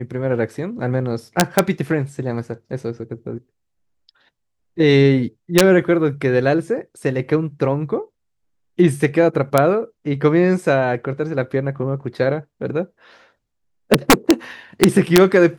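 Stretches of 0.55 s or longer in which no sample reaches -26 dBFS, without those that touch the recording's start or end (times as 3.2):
3.38–4.78
8.02–8.79
12.84–13.91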